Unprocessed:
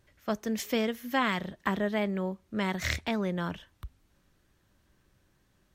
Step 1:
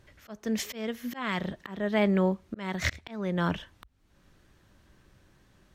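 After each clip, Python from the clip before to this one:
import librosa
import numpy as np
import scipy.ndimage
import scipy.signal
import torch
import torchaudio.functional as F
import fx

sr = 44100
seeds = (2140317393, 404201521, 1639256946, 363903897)

y = fx.high_shelf(x, sr, hz=9400.0, db=-9.0)
y = fx.auto_swell(y, sr, attack_ms=454.0)
y = y * librosa.db_to_amplitude(7.5)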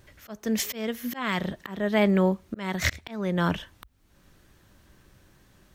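y = fx.high_shelf(x, sr, hz=10000.0, db=11.0)
y = y * librosa.db_to_amplitude(3.0)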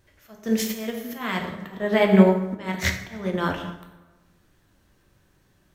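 y = fx.rev_plate(x, sr, seeds[0], rt60_s=1.3, hf_ratio=0.6, predelay_ms=0, drr_db=0.5)
y = fx.upward_expand(y, sr, threshold_db=-36.0, expansion=1.5)
y = y * librosa.db_to_amplitude(4.5)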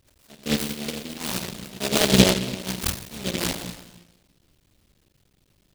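y = fx.cycle_switch(x, sr, every=3, mode='muted')
y = y + 10.0 ** (-18.5 / 20.0) * np.pad(y, (int(282 * sr / 1000.0), 0))[:len(y)]
y = fx.noise_mod_delay(y, sr, seeds[1], noise_hz=3200.0, depth_ms=0.24)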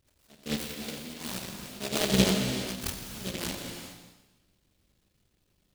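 y = fx.rev_gated(x, sr, seeds[2], gate_ms=440, shape='flat', drr_db=4.0)
y = y * librosa.db_to_amplitude(-8.5)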